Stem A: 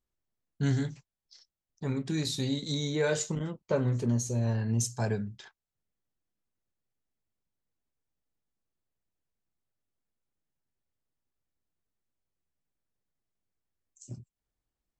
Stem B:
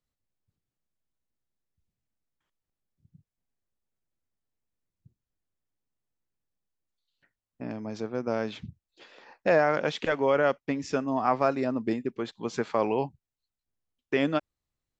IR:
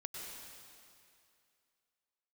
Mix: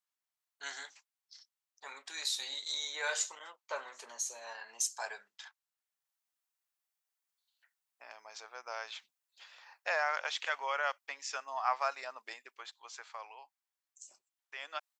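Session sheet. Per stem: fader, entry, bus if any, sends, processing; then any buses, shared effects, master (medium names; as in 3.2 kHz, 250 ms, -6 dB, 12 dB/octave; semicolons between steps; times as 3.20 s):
+0.5 dB, 0.00 s, no send, none
-4.0 dB, 0.40 s, no send, treble shelf 5.5 kHz +11 dB; auto duck -20 dB, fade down 1.55 s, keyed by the first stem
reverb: none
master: high-pass 820 Hz 24 dB/octave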